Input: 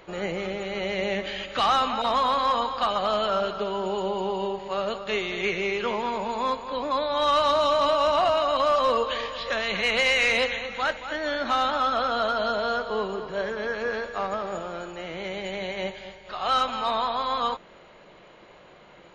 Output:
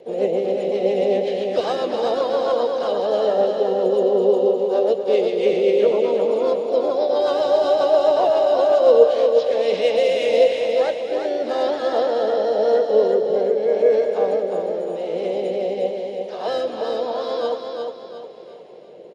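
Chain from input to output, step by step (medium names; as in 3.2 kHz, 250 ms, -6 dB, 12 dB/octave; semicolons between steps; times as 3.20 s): high-pass 150 Hz 12 dB/octave; rotary cabinet horn 7.5 Hz, later 0.9 Hz, at 8.91 s; harmony voices +4 st -9 dB, +5 st -7 dB; FFT filter 280 Hz 0 dB, 460 Hz +14 dB, 1.3 kHz -14 dB, 3.3 kHz -6 dB; feedback delay 356 ms, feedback 41%, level -5 dB; trim +2.5 dB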